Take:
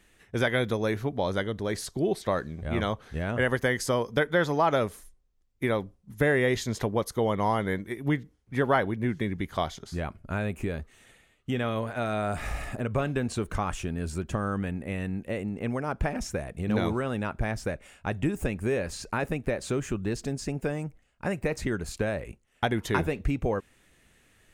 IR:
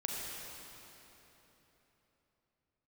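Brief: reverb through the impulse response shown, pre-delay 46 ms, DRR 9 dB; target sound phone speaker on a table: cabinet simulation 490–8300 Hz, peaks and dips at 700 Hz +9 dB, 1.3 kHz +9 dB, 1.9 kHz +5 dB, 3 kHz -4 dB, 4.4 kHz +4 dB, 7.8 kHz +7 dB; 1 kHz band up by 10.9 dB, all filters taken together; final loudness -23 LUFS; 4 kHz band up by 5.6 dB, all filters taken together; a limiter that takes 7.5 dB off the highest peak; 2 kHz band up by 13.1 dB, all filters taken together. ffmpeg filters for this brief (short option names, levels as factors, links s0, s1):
-filter_complex "[0:a]equalizer=f=1000:t=o:g=3.5,equalizer=f=2000:t=o:g=8.5,equalizer=f=4000:t=o:g=4,alimiter=limit=0.237:level=0:latency=1,asplit=2[s0][s1];[1:a]atrim=start_sample=2205,adelay=46[s2];[s1][s2]afir=irnorm=-1:irlink=0,volume=0.251[s3];[s0][s3]amix=inputs=2:normalize=0,highpass=f=490:w=0.5412,highpass=f=490:w=1.3066,equalizer=f=700:t=q:w=4:g=9,equalizer=f=1300:t=q:w=4:g=9,equalizer=f=1900:t=q:w=4:g=5,equalizer=f=3000:t=q:w=4:g=-4,equalizer=f=4400:t=q:w=4:g=4,equalizer=f=7800:t=q:w=4:g=7,lowpass=f=8300:w=0.5412,lowpass=f=8300:w=1.3066,volume=1.12"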